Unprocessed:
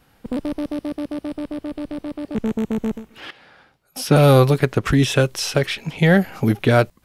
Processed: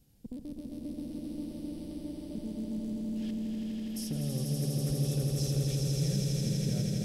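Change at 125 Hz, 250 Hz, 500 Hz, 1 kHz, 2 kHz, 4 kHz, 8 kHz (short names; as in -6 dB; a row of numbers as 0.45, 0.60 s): -11.0, -12.0, -22.0, -30.5, -29.5, -13.5, -7.5 dB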